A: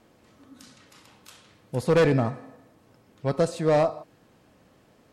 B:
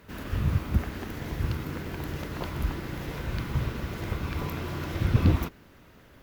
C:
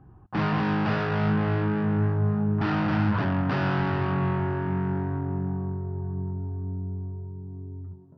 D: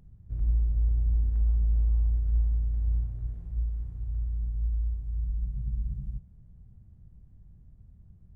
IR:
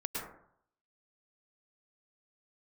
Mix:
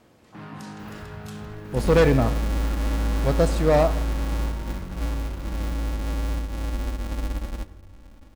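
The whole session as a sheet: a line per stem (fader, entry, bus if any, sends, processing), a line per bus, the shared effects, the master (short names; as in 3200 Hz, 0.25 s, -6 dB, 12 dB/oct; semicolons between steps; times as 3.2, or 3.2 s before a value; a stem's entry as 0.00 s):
+2.0 dB, 0.00 s, no send, dry
-7.5 dB, 0.70 s, no send, compressor, threshold -32 dBFS, peak gain reduction 16 dB
-17.5 dB, 0.00 s, send -7.5 dB, dry
-3.5 dB, 1.45 s, send -18.5 dB, half-waves squared off; comb 3.6 ms, depth 83%; compressor 2:1, threshold -22 dBFS, peak gain reduction 4.5 dB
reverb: on, RT60 0.65 s, pre-delay 97 ms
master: dry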